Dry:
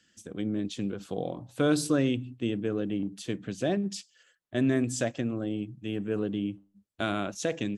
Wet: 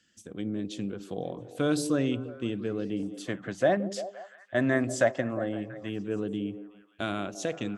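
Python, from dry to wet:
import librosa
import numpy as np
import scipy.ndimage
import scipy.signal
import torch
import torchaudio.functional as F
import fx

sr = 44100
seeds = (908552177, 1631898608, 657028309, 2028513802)

y = fx.echo_stepped(x, sr, ms=172, hz=360.0, octaves=0.7, feedback_pct=70, wet_db=-9)
y = fx.spec_box(y, sr, start_s=3.27, length_s=2.62, low_hz=510.0, high_hz=2200.0, gain_db=10)
y = F.gain(torch.from_numpy(y), -2.0).numpy()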